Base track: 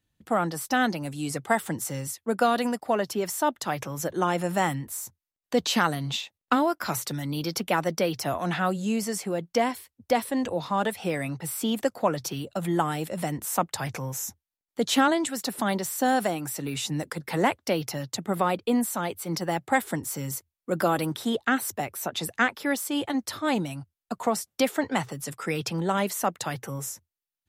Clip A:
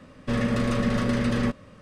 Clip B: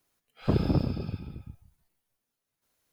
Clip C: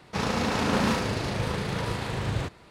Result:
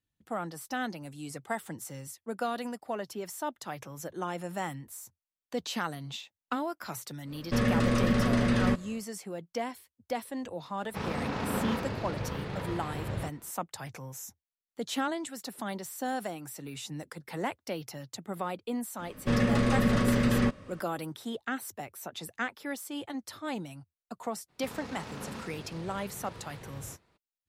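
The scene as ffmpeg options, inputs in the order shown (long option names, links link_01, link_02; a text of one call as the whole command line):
ffmpeg -i bed.wav -i cue0.wav -i cue1.wav -i cue2.wav -filter_complex "[1:a]asplit=2[link_01][link_02];[3:a]asplit=2[link_03][link_04];[0:a]volume=-10dB[link_05];[link_03]equalizer=frequency=10000:width_type=o:width=1.9:gain=-12.5[link_06];[link_01]atrim=end=1.81,asetpts=PTS-STARTPTS,volume=-1.5dB,afade=type=in:duration=0.1,afade=type=out:start_time=1.71:duration=0.1,adelay=7240[link_07];[link_06]atrim=end=2.7,asetpts=PTS-STARTPTS,volume=-6.5dB,afade=type=in:duration=0.004:curve=hsin,afade=type=out:start_time=2.696:duration=0.004:curve=hsin,adelay=10810[link_08];[link_02]atrim=end=1.81,asetpts=PTS-STARTPTS,volume=-1dB,afade=type=in:duration=0.004:curve=hsin,afade=type=out:start_time=1.806:duration=0.004:curve=hsin,adelay=18990[link_09];[link_04]atrim=end=2.7,asetpts=PTS-STARTPTS,volume=-17dB,afade=type=in:duration=0.02,afade=type=out:start_time=2.68:duration=0.02,adelay=24480[link_10];[link_05][link_07][link_08][link_09][link_10]amix=inputs=5:normalize=0" out.wav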